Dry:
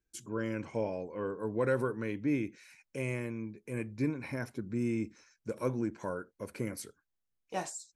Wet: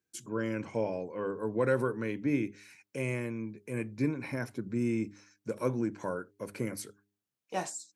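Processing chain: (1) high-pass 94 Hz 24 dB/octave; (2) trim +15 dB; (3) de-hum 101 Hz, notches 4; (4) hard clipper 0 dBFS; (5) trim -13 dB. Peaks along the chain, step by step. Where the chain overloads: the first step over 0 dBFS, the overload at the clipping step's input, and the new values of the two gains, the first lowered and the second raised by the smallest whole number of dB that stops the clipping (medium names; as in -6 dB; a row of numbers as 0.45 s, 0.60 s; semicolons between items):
-18.0 dBFS, -3.0 dBFS, -3.0 dBFS, -3.0 dBFS, -16.0 dBFS; nothing clips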